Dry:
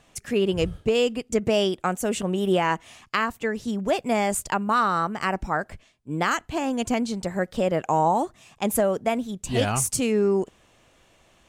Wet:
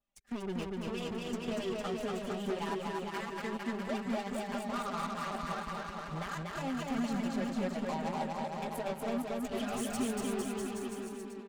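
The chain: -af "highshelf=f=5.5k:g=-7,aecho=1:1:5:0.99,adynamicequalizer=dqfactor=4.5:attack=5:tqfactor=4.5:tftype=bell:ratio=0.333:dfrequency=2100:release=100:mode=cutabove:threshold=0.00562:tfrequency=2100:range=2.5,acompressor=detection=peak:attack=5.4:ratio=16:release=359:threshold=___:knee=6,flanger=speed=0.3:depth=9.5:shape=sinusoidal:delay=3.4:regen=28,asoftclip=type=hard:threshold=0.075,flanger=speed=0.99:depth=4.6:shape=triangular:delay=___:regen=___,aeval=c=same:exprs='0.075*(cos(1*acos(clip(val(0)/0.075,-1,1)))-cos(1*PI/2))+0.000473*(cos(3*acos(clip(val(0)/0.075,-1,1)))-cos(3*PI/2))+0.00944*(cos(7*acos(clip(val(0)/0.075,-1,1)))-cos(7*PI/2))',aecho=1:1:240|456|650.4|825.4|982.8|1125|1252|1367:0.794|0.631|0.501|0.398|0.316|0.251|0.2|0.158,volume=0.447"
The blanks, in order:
0.141, 0.1, -30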